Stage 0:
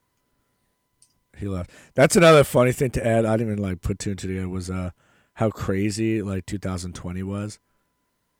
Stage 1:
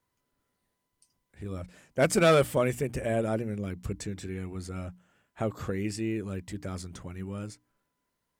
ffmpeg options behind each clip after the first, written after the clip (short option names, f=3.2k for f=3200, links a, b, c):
-af "bandreject=f=60:t=h:w=6,bandreject=f=120:t=h:w=6,bandreject=f=180:t=h:w=6,bandreject=f=240:t=h:w=6,bandreject=f=300:t=h:w=6,volume=-8dB"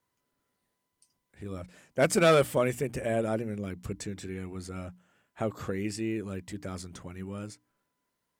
-af "lowshelf=f=71:g=-10"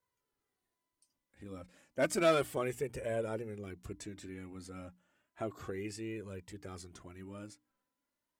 -af "flanger=delay=1.9:depth=2:regen=31:speed=0.32:shape=triangular,volume=-3.5dB"